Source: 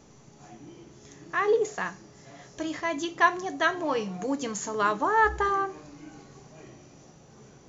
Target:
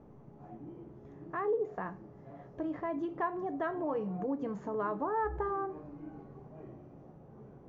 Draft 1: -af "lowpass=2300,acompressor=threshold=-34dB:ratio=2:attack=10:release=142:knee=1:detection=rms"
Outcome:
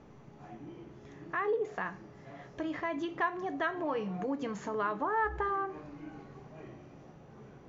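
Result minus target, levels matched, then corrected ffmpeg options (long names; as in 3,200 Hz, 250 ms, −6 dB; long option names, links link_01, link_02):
2,000 Hz band +7.0 dB
-af "lowpass=880,acompressor=threshold=-34dB:ratio=2:attack=10:release=142:knee=1:detection=rms"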